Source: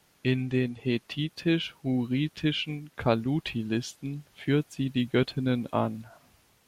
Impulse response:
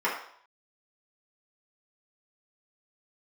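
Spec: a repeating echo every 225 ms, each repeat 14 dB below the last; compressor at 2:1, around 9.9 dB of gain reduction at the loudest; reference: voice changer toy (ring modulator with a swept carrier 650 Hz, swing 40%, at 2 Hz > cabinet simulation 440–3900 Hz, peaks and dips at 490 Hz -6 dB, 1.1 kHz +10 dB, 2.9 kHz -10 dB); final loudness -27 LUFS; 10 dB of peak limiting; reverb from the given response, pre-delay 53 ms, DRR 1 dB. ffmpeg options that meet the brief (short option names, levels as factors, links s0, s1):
-filter_complex "[0:a]acompressor=threshold=0.0126:ratio=2,alimiter=level_in=2.24:limit=0.0631:level=0:latency=1,volume=0.447,aecho=1:1:225|450:0.2|0.0399,asplit=2[s0][s1];[1:a]atrim=start_sample=2205,adelay=53[s2];[s1][s2]afir=irnorm=-1:irlink=0,volume=0.2[s3];[s0][s3]amix=inputs=2:normalize=0,aeval=exprs='val(0)*sin(2*PI*650*n/s+650*0.4/2*sin(2*PI*2*n/s))':c=same,highpass=440,equalizer=f=490:t=q:w=4:g=-6,equalizer=f=1100:t=q:w=4:g=10,equalizer=f=2900:t=q:w=4:g=-10,lowpass=f=3900:w=0.5412,lowpass=f=3900:w=1.3066,volume=4.73"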